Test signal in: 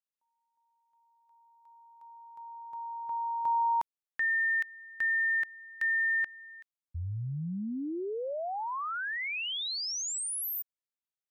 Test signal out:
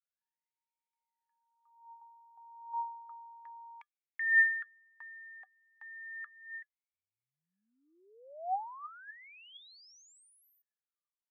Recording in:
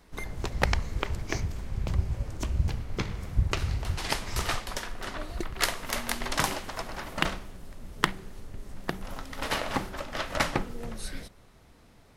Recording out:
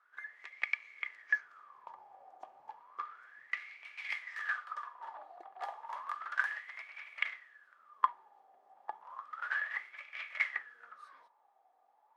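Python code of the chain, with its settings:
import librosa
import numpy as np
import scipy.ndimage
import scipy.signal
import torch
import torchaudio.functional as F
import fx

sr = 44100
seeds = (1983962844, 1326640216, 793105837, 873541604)

y = fx.wah_lfo(x, sr, hz=0.32, low_hz=760.0, high_hz=2300.0, q=16.0)
y = scipy.signal.sosfilt(scipy.signal.butter(2, 470.0, 'highpass', fs=sr, output='sos'), y)
y = fx.small_body(y, sr, hz=(1200.0, 1700.0, 3300.0), ring_ms=85, db=11)
y = y * librosa.db_to_amplitude(6.5)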